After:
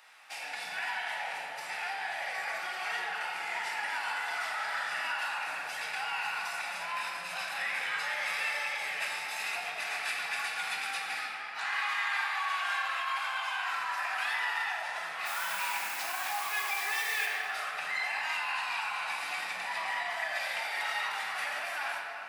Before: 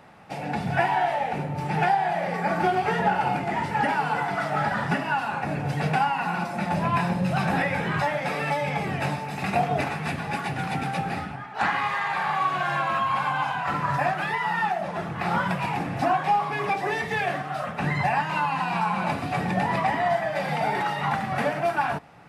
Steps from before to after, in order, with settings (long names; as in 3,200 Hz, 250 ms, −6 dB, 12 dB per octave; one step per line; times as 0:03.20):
brickwall limiter −21 dBFS, peak gain reduction 10.5 dB
0:15.25–0:17.25: background noise white −47 dBFS
high-pass filter 1,400 Hz 12 dB per octave
high-shelf EQ 2,700 Hz +8.5 dB
rectangular room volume 180 cubic metres, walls hard, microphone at 0.57 metres
level −4 dB